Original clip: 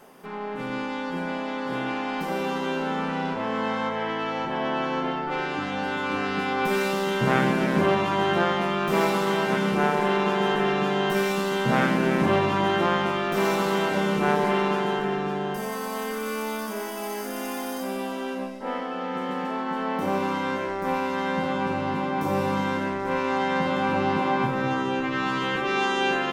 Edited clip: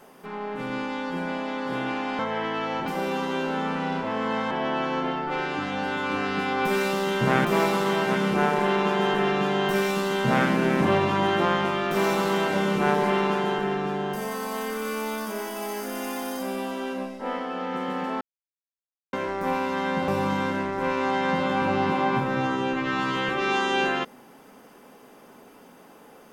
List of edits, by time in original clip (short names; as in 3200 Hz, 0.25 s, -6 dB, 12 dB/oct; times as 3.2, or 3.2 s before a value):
3.84–4.51 move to 2.19
7.45–8.86 cut
19.62–20.54 mute
21.49–22.35 cut